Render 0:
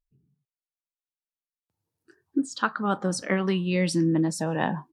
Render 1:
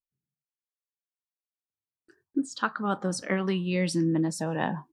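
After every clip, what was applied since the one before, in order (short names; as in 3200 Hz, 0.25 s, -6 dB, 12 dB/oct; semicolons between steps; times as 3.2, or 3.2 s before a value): gate with hold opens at -54 dBFS; gain -2.5 dB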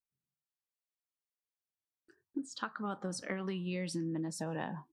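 compressor, threshold -28 dBFS, peak gain reduction 8 dB; gain -5.5 dB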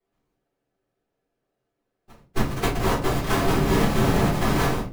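sample sorter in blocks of 256 samples; whisperiser; shoebox room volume 170 m³, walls furnished, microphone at 3.8 m; gain +7 dB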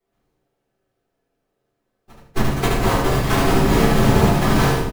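feedback echo 75 ms, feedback 29%, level -3 dB; gain +3 dB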